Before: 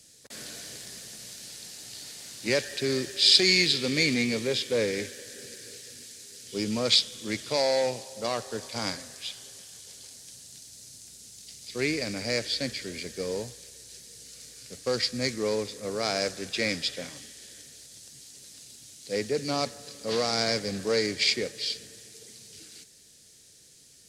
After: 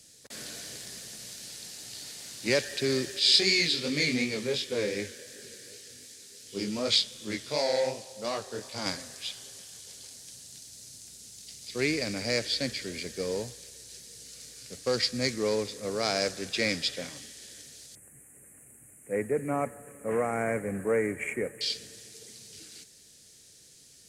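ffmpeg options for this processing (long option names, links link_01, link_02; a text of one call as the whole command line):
ffmpeg -i in.wav -filter_complex "[0:a]asettb=1/sr,asplit=3[link_01][link_02][link_03];[link_01]atrim=end=3.194[link_04];[link_02]atrim=start=3.19:end=8.86,asetpts=PTS-STARTPTS,afade=type=in:duration=0.004:curve=qsin,afade=type=out:start_time=5.666:duration=0.004:curve=qsin,flanger=delay=19:depth=5.8:speed=2.7[link_05];[link_03]atrim=start=8.856[link_06];[link_04][link_05]acrossfade=duration=0.004:curve1=hsin:curve2=qsin[link_07];[link_07][link_06]acrossfade=duration=0.004:curve1=qsin:curve2=hsin,asettb=1/sr,asplit=3[link_08][link_09][link_10];[link_08]atrim=end=17.954[link_11];[link_09]atrim=start=17.95:end=21.61,asetpts=PTS-STARTPTS,afade=type=in:duration=0.004:curve=qsin,afade=type=out:start_time=3.656:duration=0.004:curve=qsin,asuperstop=centerf=4400:order=8:qfactor=0.73[link_12];[link_10]atrim=start=21.606[link_13];[link_11][link_12]acrossfade=duration=0.004:curve1=hsin:curve2=qsin[link_14];[link_14][link_13]acrossfade=duration=0.004:curve1=qsin:curve2=hsin" out.wav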